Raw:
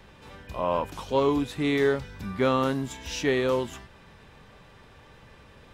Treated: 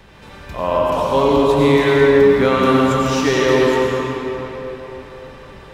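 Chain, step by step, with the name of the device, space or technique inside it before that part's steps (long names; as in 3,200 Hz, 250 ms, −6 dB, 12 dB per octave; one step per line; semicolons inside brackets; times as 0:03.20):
cathedral (convolution reverb RT60 4.1 s, pre-delay 84 ms, DRR −4.5 dB)
level +6 dB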